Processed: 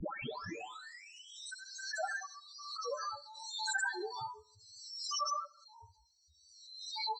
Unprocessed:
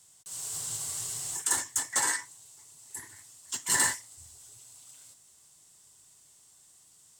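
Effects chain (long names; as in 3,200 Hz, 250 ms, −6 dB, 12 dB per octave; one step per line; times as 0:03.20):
turntable start at the beginning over 0.64 s
low-shelf EQ 98 Hz −7 dB
spectral peaks only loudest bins 4
frequency shifter −210 Hz
delay with pitch and tempo change per echo 206 ms, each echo −5 semitones, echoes 2
head-to-tape spacing loss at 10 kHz 36 dB
on a send: repeating echo 66 ms, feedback 48%, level −23.5 dB
on the sum: background raised ahead of every attack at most 47 dB per second
level +6.5 dB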